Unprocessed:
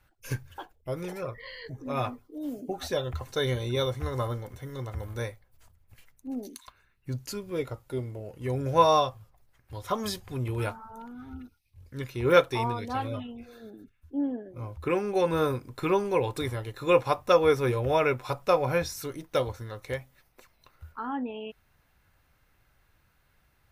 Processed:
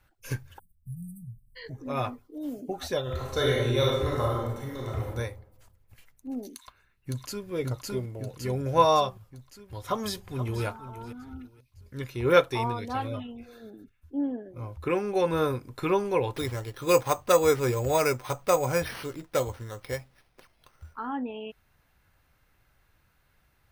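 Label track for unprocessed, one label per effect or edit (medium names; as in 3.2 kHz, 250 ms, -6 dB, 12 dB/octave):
0.590000	1.560000	spectral selection erased 220–7800 Hz
3.020000	5.070000	reverb throw, RT60 0.92 s, DRR -3 dB
6.530000	7.490000	echo throw 560 ms, feedback 60%, level -0.5 dB
9.860000	10.640000	echo throw 480 ms, feedback 20%, level -13 dB
16.340000	20.940000	careless resampling rate divided by 6×, down none, up hold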